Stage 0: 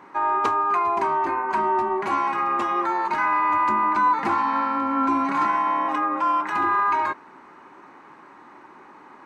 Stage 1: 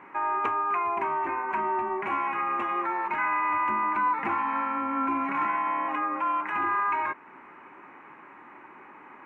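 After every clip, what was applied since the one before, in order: resonant high shelf 3.3 kHz -10.5 dB, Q 3; in parallel at -1 dB: compression, threshold -31 dBFS, peak gain reduction 14.5 dB; on the sum: trim -8.5 dB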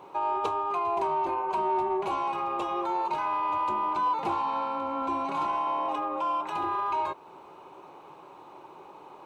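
FFT filter 160 Hz 0 dB, 240 Hz -13 dB, 370 Hz 0 dB, 530 Hz +3 dB, 870 Hz -1 dB, 1.3 kHz -10 dB, 1.9 kHz -23 dB, 3.9 kHz +15 dB, 6.3 kHz +10 dB; in parallel at -4 dB: saturation -28.5 dBFS, distortion -16 dB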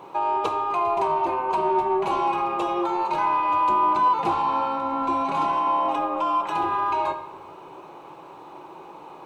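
simulated room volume 990 m³, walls mixed, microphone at 0.7 m; trim +5 dB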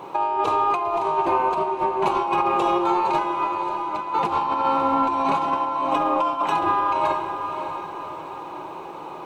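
compressor with a negative ratio -25 dBFS, ratio -0.5; echo that smears into a reverb 594 ms, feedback 48%, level -8.5 dB; trim +3 dB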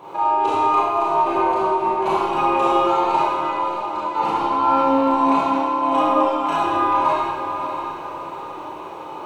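Schroeder reverb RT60 1.2 s, combs from 26 ms, DRR -7.5 dB; trim -5.5 dB

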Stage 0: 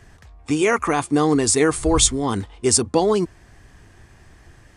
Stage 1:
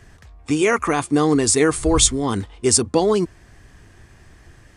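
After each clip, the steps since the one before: peaking EQ 830 Hz -2.5 dB 0.63 oct; trim +1 dB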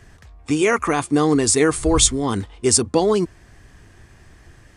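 no audible change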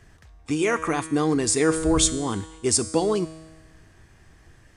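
feedback comb 160 Hz, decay 1.3 s, mix 70%; trim +4.5 dB

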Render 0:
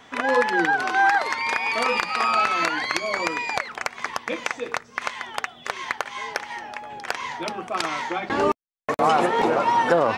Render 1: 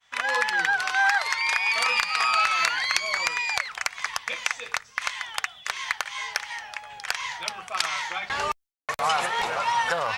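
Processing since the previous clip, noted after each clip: expander -40 dBFS; amplifier tone stack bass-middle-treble 10-0-10; trim +5.5 dB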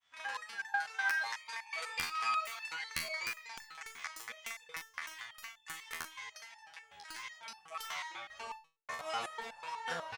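integer overflow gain 7.5 dB; early reflections 41 ms -9 dB, 56 ms -15.5 dB; resonator arpeggio 8.1 Hz 82–880 Hz; trim -3.5 dB

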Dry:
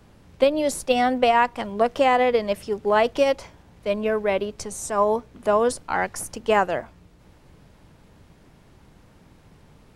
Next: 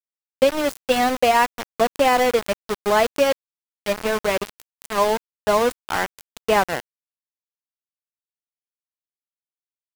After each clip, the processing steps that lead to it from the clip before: small samples zeroed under -22 dBFS; trim +1.5 dB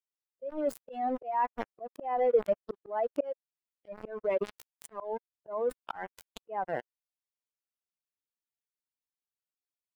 spectral contrast enhancement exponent 2.1; dynamic bell 6.1 kHz, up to -5 dB, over -44 dBFS, Q 0.79; slow attack 371 ms; trim -4 dB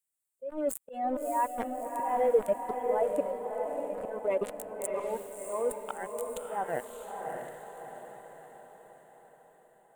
resonant high shelf 6.6 kHz +8.5 dB, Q 3; echo that smears into a reverb 642 ms, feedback 51%, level -4 dB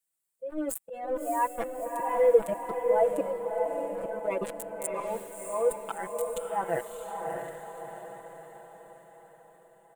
comb 6 ms, depth 96%

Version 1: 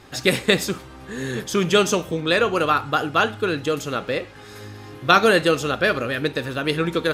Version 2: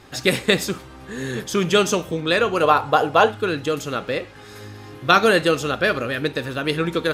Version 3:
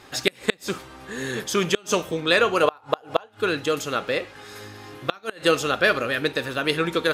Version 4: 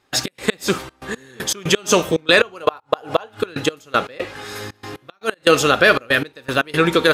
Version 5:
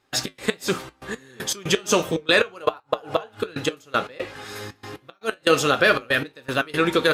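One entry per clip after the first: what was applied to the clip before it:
time-frequency box 2.63–3.32 s, 410–1100 Hz +8 dB
bass shelf 270 Hz -9 dB; inverted gate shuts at -7 dBFS, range -31 dB; trim +1.5 dB
trance gate ".x.xxxx.x." 118 bpm -24 dB; loudness maximiser +10 dB; trim -1 dB
flange 1.4 Hz, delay 7.2 ms, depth 2.5 ms, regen -69%

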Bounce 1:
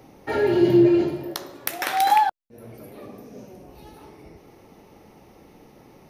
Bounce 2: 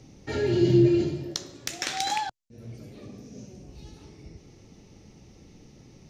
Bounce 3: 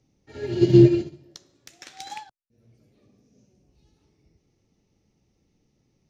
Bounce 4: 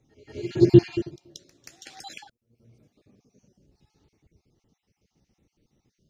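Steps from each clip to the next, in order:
FFT filter 120 Hz 0 dB, 930 Hz -18 dB, 7.2 kHz +2 dB, 11 kHz -23 dB; trim +5 dB
upward expansion 2.5:1, over -32 dBFS; trim +7 dB
random holes in the spectrogram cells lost 36%; pre-echo 180 ms -16 dB; trim +1.5 dB

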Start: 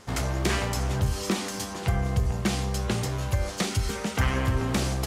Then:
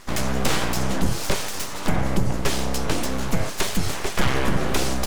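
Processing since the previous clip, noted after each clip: full-wave rectifier; trim +6.5 dB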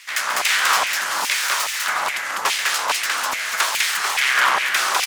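loudspeakers at several distances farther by 47 m -10 dB, 69 m -1 dB; LFO high-pass saw down 2.4 Hz 930–2400 Hz; trim +4 dB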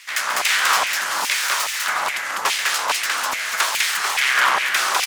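no audible change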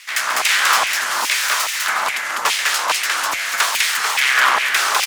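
frequency shift +34 Hz; trim +2.5 dB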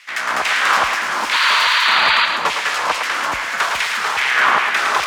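painted sound noise, 1.32–2.26 s, 890–4800 Hz -14 dBFS; RIAA curve playback; thinning echo 110 ms, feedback 46%, high-pass 420 Hz, level -5.5 dB; trim +1 dB

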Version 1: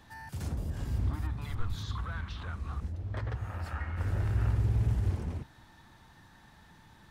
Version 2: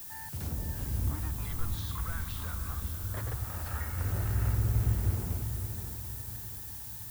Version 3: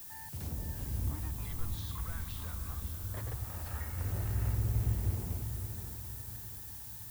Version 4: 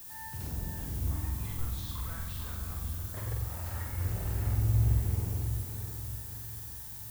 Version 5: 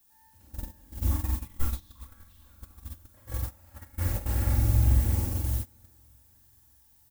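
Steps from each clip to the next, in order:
added noise violet -43 dBFS; on a send: echo that smears into a reverb 559 ms, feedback 48%, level -8 dB; on the sum: trim -1 dB
dynamic bell 1.4 kHz, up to -5 dB, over -58 dBFS, Q 2.8; trim -3.5 dB
flutter echo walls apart 7.9 m, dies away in 0.75 s
gate -32 dBFS, range -24 dB; comb 3.6 ms, depth 93%; trim +4 dB

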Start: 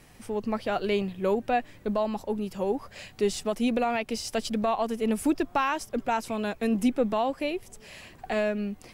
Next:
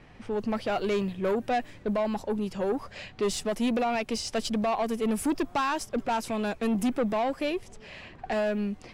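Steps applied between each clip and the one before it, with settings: level-controlled noise filter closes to 2.8 kHz, open at -24.5 dBFS; saturation -24 dBFS, distortion -12 dB; trim +2.5 dB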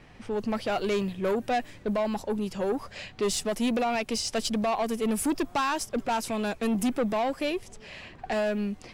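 treble shelf 4.2 kHz +5.5 dB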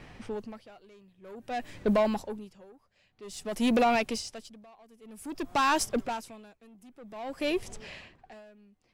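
logarithmic tremolo 0.52 Hz, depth 32 dB; trim +3.5 dB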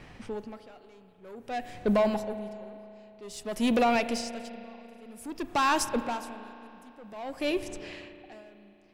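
spring tank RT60 3.1 s, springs 34 ms, chirp 20 ms, DRR 11 dB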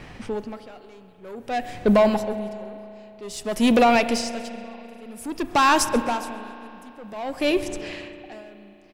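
feedback delay 133 ms, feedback 49%, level -21.5 dB; trim +7.5 dB

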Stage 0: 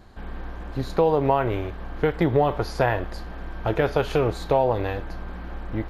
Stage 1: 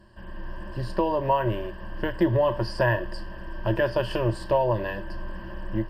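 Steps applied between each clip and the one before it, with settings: rippled EQ curve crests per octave 1.3, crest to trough 17 dB; level rider gain up to 4 dB; trim -7.5 dB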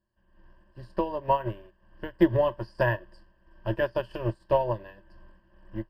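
upward expansion 2.5:1, over -37 dBFS; trim +3 dB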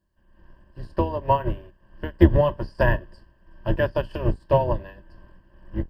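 octave divider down 2 oct, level +4 dB; trim +3.5 dB

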